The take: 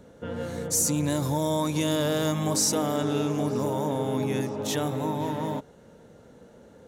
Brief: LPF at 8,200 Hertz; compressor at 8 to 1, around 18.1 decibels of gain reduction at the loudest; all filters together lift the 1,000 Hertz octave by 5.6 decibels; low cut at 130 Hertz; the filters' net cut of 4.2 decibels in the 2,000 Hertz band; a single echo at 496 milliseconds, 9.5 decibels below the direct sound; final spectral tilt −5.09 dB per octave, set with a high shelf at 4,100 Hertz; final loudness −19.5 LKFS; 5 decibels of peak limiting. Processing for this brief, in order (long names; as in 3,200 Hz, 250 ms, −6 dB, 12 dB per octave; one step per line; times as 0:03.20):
high-pass filter 130 Hz
low-pass filter 8,200 Hz
parametric band 1,000 Hz +8.5 dB
parametric band 2,000 Hz −8.5 dB
high-shelf EQ 4,100 Hz −3.5 dB
downward compressor 8 to 1, threshold −40 dBFS
brickwall limiter −35 dBFS
single-tap delay 496 ms −9.5 dB
level +25 dB